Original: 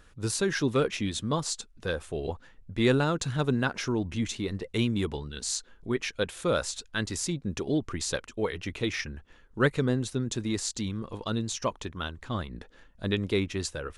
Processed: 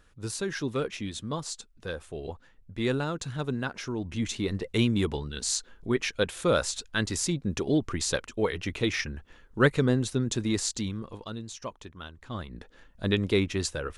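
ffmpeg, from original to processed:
-af "volume=13dB,afade=t=in:st=3.95:d=0.51:silence=0.446684,afade=t=out:st=10.63:d=0.71:silence=0.298538,afade=t=in:st=12.12:d=0.96:silence=0.298538"

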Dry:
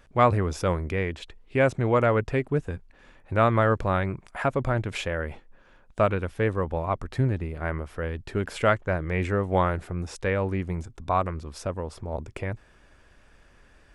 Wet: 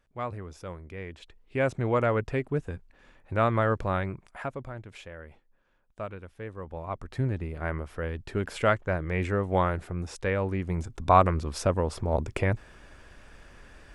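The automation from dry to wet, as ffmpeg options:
-af "volume=16.5dB,afade=t=in:st=0.87:d=0.95:silence=0.281838,afade=t=out:st=3.99:d=0.71:silence=0.281838,afade=t=in:st=6.52:d=1.02:silence=0.237137,afade=t=in:st=10.61:d=0.51:silence=0.421697"

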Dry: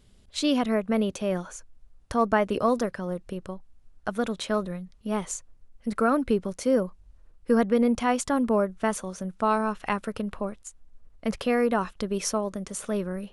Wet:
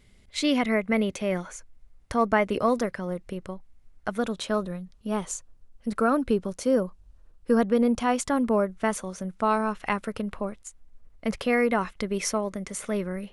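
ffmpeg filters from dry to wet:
-af "asetnsamples=n=441:p=0,asendcmd='1.55 equalizer g 8;4.19 equalizer g -3.5;8.13 equalizer g 4.5;11.53 equalizer g 11.5',equalizer=f=2.1k:t=o:w=0.25:g=14.5"

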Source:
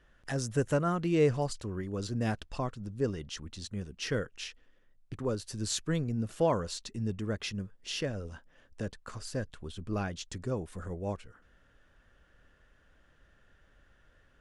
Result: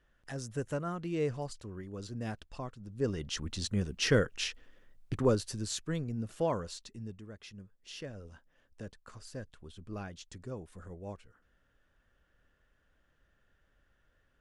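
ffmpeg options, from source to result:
-af "volume=13dB,afade=t=in:st=2.86:d=0.66:silence=0.223872,afade=t=out:st=5.27:d=0.4:silence=0.316228,afade=t=out:st=6.57:d=0.74:silence=0.281838,afade=t=in:st=7.31:d=1:silence=0.446684"

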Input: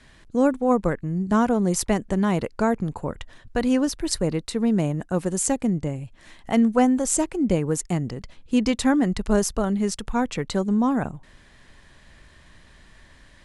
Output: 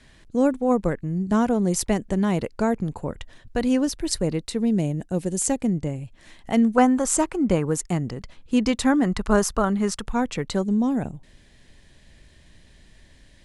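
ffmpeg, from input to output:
-af "asetnsamples=n=441:p=0,asendcmd='4.6 equalizer g -13;5.42 equalizer g -3.5;6.78 equalizer g 8;7.65 equalizer g 1.5;9.05 equalizer g 8.5;10.02 equalizer g -1;10.64 equalizer g -12',equalizer=f=1.2k:t=o:w=1.1:g=-4"

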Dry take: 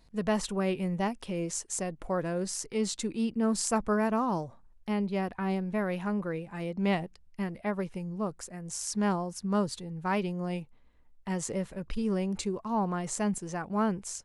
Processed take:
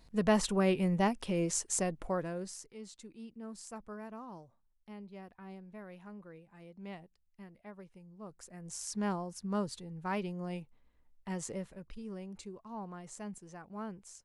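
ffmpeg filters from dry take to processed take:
-af "volume=13dB,afade=t=out:st=1.85:d=0.41:silence=0.446684,afade=t=out:st=2.26:d=0.5:silence=0.251189,afade=t=in:st=8.18:d=0.48:silence=0.251189,afade=t=out:st=11.45:d=0.51:silence=0.398107"

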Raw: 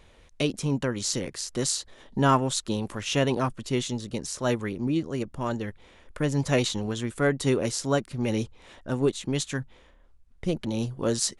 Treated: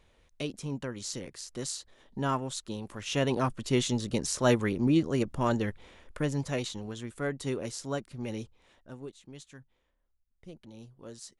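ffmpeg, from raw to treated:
-af "volume=2dB,afade=t=in:st=2.86:d=1.17:silence=0.281838,afade=t=out:st=5.66:d=0.87:silence=0.281838,afade=t=out:st=8.24:d=0.86:silence=0.281838"

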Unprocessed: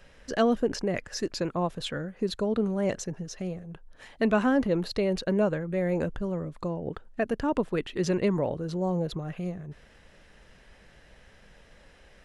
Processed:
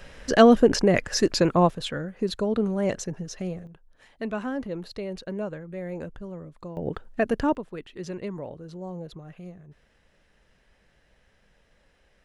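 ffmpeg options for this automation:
-af "asetnsamples=n=441:p=0,asendcmd='1.7 volume volume 2dB;3.67 volume volume -7dB;6.77 volume volume 4dB;7.55 volume volume -8.5dB',volume=9dB"

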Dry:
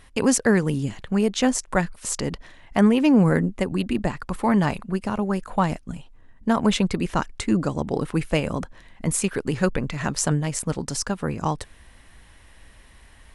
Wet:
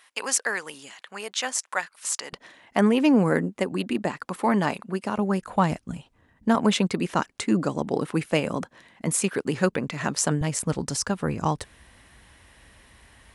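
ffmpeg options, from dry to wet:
-af "asetnsamples=n=441:p=0,asendcmd='2.33 highpass f 230;5.17 highpass f 77;6.55 highpass f 170;10.41 highpass f 61',highpass=950"

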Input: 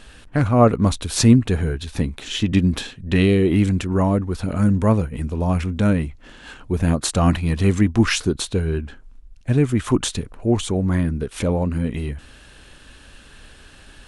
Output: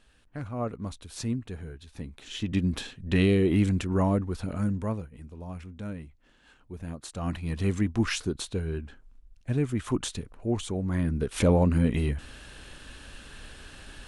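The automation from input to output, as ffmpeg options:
-af "volume=12.5dB,afade=t=in:st=1.96:d=1.09:silence=0.251189,afade=t=out:st=4.14:d=0.98:silence=0.223872,afade=t=in:st=7.11:d=0.48:silence=0.334965,afade=t=in:st=10.91:d=0.53:silence=0.354813"

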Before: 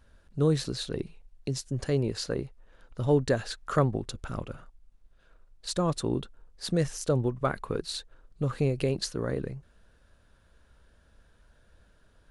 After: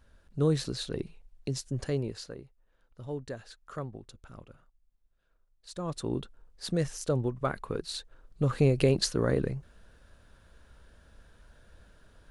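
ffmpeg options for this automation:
-af "volume=16dB,afade=t=out:st=1.76:d=0.61:silence=0.251189,afade=t=in:st=5.69:d=0.47:silence=0.281838,afade=t=in:st=7.89:d=0.94:silence=0.473151"

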